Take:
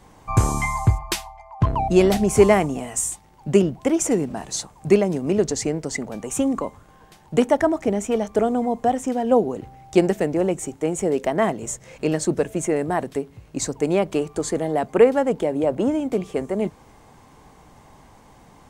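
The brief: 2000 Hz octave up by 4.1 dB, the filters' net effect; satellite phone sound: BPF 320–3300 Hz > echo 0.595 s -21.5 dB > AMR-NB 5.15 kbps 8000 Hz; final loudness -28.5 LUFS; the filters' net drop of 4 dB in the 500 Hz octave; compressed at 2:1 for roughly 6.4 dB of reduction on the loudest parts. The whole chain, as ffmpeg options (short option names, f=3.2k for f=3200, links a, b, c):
-af "equalizer=f=500:t=o:g=-4,equalizer=f=2k:t=o:g=5.5,acompressor=threshold=-23dB:ratio=2,highpass=320,lowpass=3.3k,aecho=1:1:595:0.0841,volume=2dB" -ar 8000 -c:a libopencore_amrnb -b:a 5150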